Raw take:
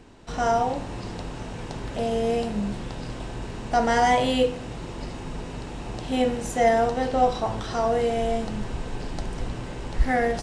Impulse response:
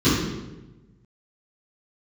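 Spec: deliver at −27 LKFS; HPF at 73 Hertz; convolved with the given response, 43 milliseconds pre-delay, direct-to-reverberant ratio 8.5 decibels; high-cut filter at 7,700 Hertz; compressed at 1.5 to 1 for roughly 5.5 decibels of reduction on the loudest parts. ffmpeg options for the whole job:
-filter_complex "[0:a]highpass=73,lowpass=7700,acompressor=threshold=-31dB:ratio=1.5,asplit=2[link_01][link_02];[1:a]atrim=start_sample=2205,adelay=43[link_03];[link_02][link_03]afir=irnorm=-1:irlink=0,volume=-27.5dB[link_04];[link_01][link_04]amix=inputs=2:normalize=0,volume=0.5dB"

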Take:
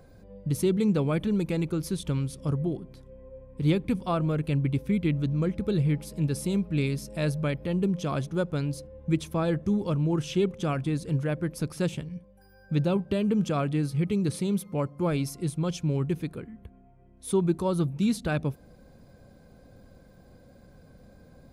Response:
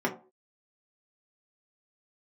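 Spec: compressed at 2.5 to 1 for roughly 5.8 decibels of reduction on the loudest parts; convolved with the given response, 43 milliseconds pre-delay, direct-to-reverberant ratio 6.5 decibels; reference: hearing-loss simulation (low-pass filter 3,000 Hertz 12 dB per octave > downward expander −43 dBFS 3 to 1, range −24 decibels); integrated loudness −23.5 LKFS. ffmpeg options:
-filter_complex "[0:a]acompressor=threshold=-28dB:ratio=2.5,asplit=2[link_01][link_02];[1:a]atrim=start_sample=2205,adelay=43[link_03];[link_02][link_03]afir=irnorm=-1:irlink=0,volume=-17dB[link_04];[link_01][link_04]amix=inputs=2:normalize=0,lowpass=3000,agate=range=-24dB:threshold=-43dB:ratio=3,volume=7dB"

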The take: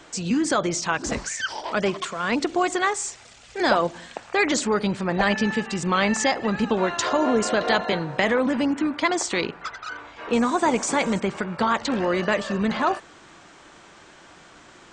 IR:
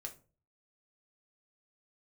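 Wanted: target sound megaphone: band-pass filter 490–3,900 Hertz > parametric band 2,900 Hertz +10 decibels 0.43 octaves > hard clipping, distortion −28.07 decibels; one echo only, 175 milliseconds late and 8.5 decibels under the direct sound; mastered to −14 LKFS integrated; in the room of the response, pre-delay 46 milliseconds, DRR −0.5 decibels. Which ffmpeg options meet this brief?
-filter_complex "[0:a]aecho=1:1:175:0.376,asplit=2[link_01][link_02];[1:a]atrim=start_sample=2205,adelay=46[link_03];[link_02][link_03]afir=irnorm=-1:irlink=0,volume=4dB[link_04];[link_01][link_04]amix=inputs=2:normalize=0,highpass=490,lowpass=3900,equalizer=frequency=2900:width_type=o:width=0.43:gain=10,asoftclip=type=hard:threshold=-8.5dB,volume=7.5dB"

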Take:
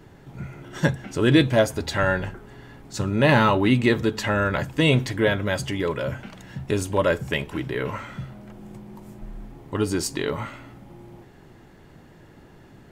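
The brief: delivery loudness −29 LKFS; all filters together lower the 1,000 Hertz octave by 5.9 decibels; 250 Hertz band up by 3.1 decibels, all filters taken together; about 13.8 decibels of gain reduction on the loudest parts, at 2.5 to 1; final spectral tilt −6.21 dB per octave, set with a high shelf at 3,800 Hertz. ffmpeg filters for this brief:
ffmpeg -i in.wav -af "equalizer=frequency=250:width_type=o:gain=4.5,equalizer=frequency=1000:width_type=o:gain=-7.5,highshelf=frequency=3800:gain=-7.5,acompressor=threshold=-32dB:ratio=2.5,volume=4.5dB" out.wav

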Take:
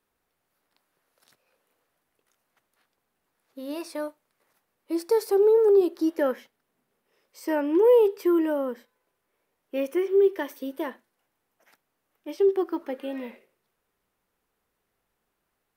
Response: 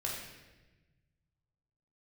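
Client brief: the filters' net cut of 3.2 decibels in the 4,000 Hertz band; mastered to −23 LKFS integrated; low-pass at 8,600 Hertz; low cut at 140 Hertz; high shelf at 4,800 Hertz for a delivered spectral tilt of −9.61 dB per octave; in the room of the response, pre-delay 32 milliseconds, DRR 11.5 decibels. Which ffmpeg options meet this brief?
-filter_complex "[0:a]highpass=140,lowpass=8600,equalizer=frequency=4000:width_type=o:gain=-7.5,highshelf=frequency=4800:gain=6,asplit=2[link_01][link_02];[1:a]atrim=start_sample=2205,adelay=32[link_03];[link_02][link_03]afir=irnorm=-1:irlink=0,volume=-14.5dB[link_04];[link_01][link_04]amix=inputs=2:normalize=0,volume=1.5dB"

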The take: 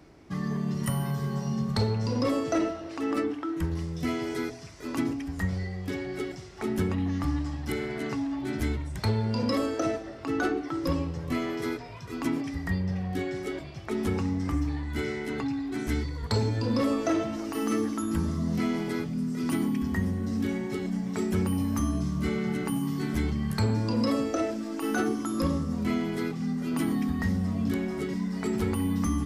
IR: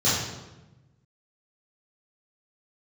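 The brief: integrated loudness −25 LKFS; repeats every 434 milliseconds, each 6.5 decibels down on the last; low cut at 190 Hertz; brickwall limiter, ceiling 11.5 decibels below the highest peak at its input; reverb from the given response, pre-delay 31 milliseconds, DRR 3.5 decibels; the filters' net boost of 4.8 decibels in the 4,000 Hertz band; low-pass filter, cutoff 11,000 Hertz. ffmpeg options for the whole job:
-filter_complex "[0:a]highpass=190,lowpass=11000,equalizer=frequency=4000:width_type=o:gain=6,alimiter=limit=-23dB:level=0:latency=1,aecho=1:1:434|868|1302|1736|2170|2604:0.473|0.222|0.105|0.0491|0.0231|0.0109,asplit=2[link_01][link_02];[1:a]atrim=start_sample=2205,adelay=31[link_03];[link_02][link_03]afir=irnorm=-1:irlink=0,volume=-19dB[link_04];[link_01][link_04]amix=inputs=2:normalize=0,volume=2.5dB"

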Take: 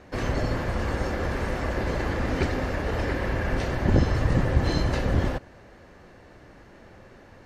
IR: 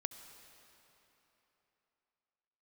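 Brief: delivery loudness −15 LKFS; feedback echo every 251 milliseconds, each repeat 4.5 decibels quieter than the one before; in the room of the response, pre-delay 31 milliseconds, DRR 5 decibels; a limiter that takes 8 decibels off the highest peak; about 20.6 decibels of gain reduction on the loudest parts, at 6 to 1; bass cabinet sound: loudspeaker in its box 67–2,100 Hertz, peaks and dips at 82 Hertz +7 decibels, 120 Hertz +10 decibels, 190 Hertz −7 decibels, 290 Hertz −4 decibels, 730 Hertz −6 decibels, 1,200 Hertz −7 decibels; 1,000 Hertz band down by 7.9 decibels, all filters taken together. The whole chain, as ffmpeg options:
-filter_complex "[0:a]equalizer=frequency=1000:width_type=o:gain=-4.5,acompressor=threshold=-38dB:ratio=6,alimiter=level_in=10.5dB:limit=-24dB:level=0:latency=1,volume=-10.5dB,aecho=1:1:251|502|753|1004|1255|1506|1757|2008|2259:0.596|0.357|0.214|0.129|0.0772|0.0463|0.0278|0.0167|0.01,asplit=2[link_01][link_02];[1:a]atrim=start_sample=2205,adelay=31[link_03];[link_02][link_03]afir=irnorm=-1:irlink=0,volume=-3.5dB[link_04];[link_01][link_04]amix=inputs=2:normalize=0,highpass=frequency=67:width=0.5412,highpass=frequency=67:width=1.3066,equalizer=frequency=82:width_type=q:width=4:gain=7,equalizer=frequency=120:width_type=q:width=4:gain=10,equalizer=frequency=190:width_type=q:width=4:gain=-7,equalizer=frequency=290:width_type=q:width=4:gain=-4,equalizer=frequency=730:width_type=q:width=4:gain=-6,equalizer=frequency=1200:width_type=q:width=4:gain=-7,lowpass=frequency=2100:width=0.5412,lowpass=frequency=2100:width=1.3066,volume=26.5dB"

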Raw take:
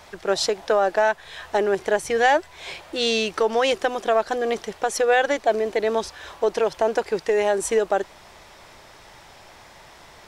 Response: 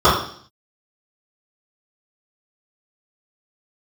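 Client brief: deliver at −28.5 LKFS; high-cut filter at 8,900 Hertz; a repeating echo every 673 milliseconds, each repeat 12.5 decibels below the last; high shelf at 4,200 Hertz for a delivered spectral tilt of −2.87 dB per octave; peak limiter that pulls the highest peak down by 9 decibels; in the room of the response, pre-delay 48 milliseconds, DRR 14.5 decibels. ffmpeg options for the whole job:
-filter_complex "[0:a]lowpass=8900,highshelf=frequency=4200:gain=-4,alimiter=limit=-15.5dB:level=0:latency=1,aecho=1:1:673|1346|2019:0.237|0.0569|0.0137,asplit=2[link_01][link_02];[1:a]atrim=start_sample=2205,adelay=48[link_03];[link_02][link_03]afir=irnorm=-1:irlink=0,volume=-42.5dB[link_04];[link_01][link_04]amix=inputs=2:normalize=0,volume=-2dB"

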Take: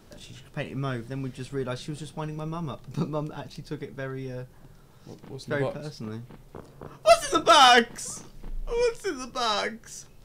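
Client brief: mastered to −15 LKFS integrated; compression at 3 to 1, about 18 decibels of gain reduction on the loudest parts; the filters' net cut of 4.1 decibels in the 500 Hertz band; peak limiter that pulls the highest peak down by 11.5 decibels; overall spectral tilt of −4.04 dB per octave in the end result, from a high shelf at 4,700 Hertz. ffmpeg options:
ffmpeg -i in.wav -af "equalizer=frequency=500:width_type=o:gain=-6,highshelf=frequency=4700:gain=7.5,acompressor=threshold=-38dB:ratio=3,volume=29dB,alimiter=limit=-5dB:level=0:latency=1" out.wav

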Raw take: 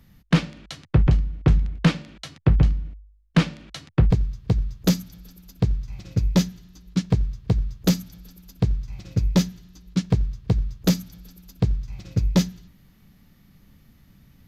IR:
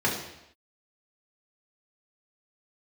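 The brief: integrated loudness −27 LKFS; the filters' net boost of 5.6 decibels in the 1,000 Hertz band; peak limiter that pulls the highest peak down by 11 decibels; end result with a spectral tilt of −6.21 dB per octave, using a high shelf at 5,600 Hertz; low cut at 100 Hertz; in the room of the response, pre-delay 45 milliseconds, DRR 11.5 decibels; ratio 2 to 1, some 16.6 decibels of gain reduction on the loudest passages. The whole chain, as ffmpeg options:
-filter_complex "[0:a]highpass=100,equalizer=frequency=1000:width_type=o:gain=7.5,highshelf=frequency=5600:gain=-8,acompressor=threshold=-45dB:ratio=2,alimiter=level_in=7dB:limit=-24dB:level=0:latency=1,volume=-7dB,asplit=2[link_01][link_02];[1:a]atrim=start_sample=2205,adelay=45[link_03];[link_02][link_03]afir=irnorm=-1:irlink=0,volume=-24.5dB[link_04];[link_01][link_04]amix=inputs=2:normalize=0,volume=19.5dB"

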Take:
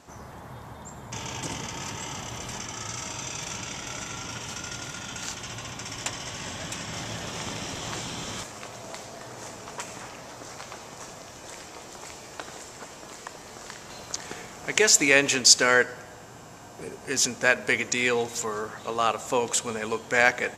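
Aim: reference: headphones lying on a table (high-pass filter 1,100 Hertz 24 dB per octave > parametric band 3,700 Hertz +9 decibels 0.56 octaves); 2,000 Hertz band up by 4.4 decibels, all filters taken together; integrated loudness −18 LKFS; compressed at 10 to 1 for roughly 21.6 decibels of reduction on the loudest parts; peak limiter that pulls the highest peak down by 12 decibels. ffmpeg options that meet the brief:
ffmpeg -i in.wav -af "equalizer=frequency=2000:width_type=o:gain=4.5,acompressor=threshold=-33dB:ratio=10,alimiter=level_in=1.5dB:limit=-24dB:level=0:latency=1,volume=-1.5dB,highpass=frequency=1100:width=0.5412,highpass=frequency=1100:width=1.3066,equalizer=frequency=3700:width_type=o:width=0.56:gain=9,volume=18.5dB" out.wav

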